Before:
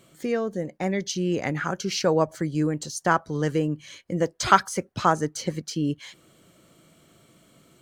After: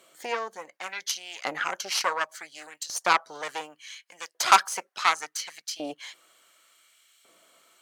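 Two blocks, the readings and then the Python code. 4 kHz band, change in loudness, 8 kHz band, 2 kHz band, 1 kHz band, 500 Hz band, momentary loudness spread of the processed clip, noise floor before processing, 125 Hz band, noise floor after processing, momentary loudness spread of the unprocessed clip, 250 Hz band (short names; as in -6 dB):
+3.0 dB, -2.0 dB, +2.0 dB, +1.5 dB, -0.5 dB, -11.0 dB, 22 LU, -59 dBFS, under -25 dB, -72 dBFS, 10 LU, -19.0 dB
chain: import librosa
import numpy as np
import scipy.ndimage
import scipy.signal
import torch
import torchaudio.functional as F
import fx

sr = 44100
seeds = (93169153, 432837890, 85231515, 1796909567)

y = fx.cheby_harmonics(x, sr, harmonics=(5, 8), levels_db=(-19, -11), full_scale_db=-1.0)
y = fx.filter_lfo_highpass(y, sr, shape='saw_up', hz=0.69, low_hz=540.0, high_hz=2600.0, q=0.9)
y = F.gain(torch.from_numpy(y), -3.0).numpy()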